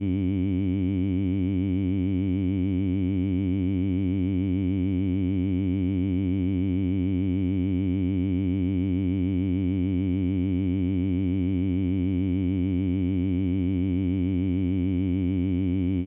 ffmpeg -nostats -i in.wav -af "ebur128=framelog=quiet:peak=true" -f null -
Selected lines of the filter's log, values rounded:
Integrated loudness:
  I:         -25.7 LUFS
  Threshold: -35.7 LUFS
Loudness range:
  LRA:         0.1 LU
  Threshold: -45.7 LUFS
  LRA low:   -25.7 LUFS
  LRA high:  -25.6 LUFS
True peak:
  Peak:      -16.0 dBFS